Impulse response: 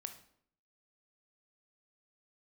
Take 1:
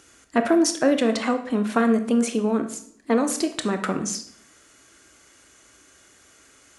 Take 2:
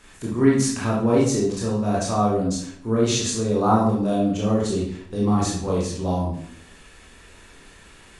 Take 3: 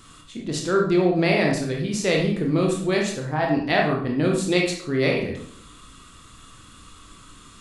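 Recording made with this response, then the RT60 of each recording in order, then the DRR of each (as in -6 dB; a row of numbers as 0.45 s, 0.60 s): 1; 0.65 s, 0.65 s, 0.65 s; 7.0 dB, -5.5 dB, -0.5 dB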